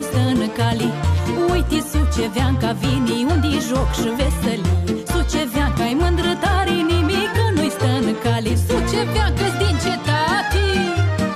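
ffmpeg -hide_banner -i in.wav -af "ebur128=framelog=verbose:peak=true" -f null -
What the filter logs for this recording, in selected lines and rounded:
Integrated loudness:
  I:         -18.9 LUFS
  Threshold: -28.9 LUFS
Loudness range:
  LRA:         1.1 LU
  Threshold: -38.9 LUFS
  LRA low:   -19.5 LUFS
  LRA high:  -18.4 LUFS
True peak:
  Peak:       -7.4 dBFS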